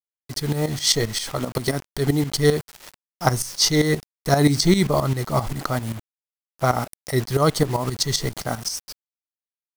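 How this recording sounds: a quantiser's noise floor 6-bit, dither none; tremolo saw up 7.6 Hz, depth 75%

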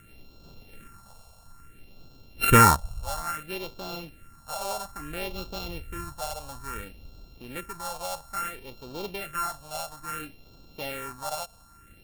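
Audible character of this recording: a buzz of ramps at a fixed pitch in blocks of 32 samples; phasing stages 4, 0.59 Hz, lowest notch 310–1900 Hz

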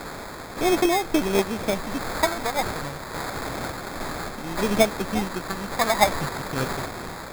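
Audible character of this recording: a quantiser's noise floor 6-bit, dither triangular; phasing stages 4, 0.29 Hz, lowest notch 360–2800 Hz; aliases and images of a low sample rate 2.9 kHz, jitter 0%; random-step tremolo

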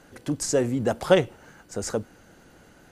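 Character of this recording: noise floor -54 dBFS; spectral tilt -4.5 dB/octave

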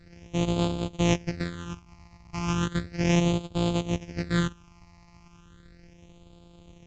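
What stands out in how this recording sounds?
a buzz of ramps at a fixed pitch in blocks of 256 samples; phasing stages 8, 0.35 Hz, lowest notch 450–1800 Hz; µ-law

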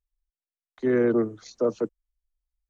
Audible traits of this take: noise floor -96 dBFS; spectral tilt -5.0 dB/octave

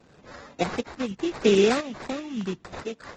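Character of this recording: chopped level 1 Hz, depth 65%, duty 80%; phasing stages 4, 0.73 Hz, lowest notch 560–4800 Hz; aliases and images of a low sample rate 3.1 kHz, jitter 20%; AAC

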